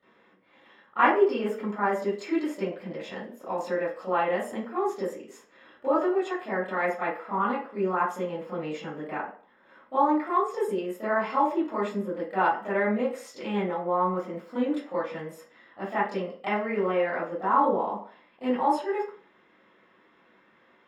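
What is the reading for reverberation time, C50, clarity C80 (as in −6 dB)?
0.50 s, 3.5 dB, 9.0 dB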